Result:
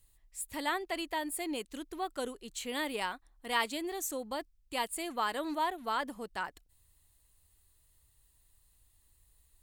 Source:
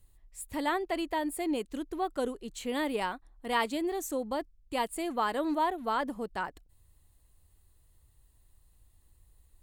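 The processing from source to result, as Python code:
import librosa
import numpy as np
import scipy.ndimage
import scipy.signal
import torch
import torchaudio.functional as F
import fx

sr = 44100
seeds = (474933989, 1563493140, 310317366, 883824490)

y = fx.tilt_shelf(x, sr, db=-5.0, hz=1200.0)
y = y * 10.0 ** (-2.0 / 20.0)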